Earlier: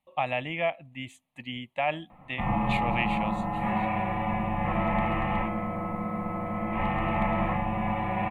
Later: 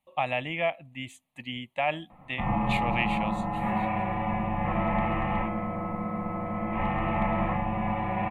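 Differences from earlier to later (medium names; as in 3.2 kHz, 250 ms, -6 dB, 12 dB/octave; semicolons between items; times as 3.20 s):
speech: add treble shelf 4.3 kHz +11 dB; master: add treble shelf 3.8 kHz -6 dB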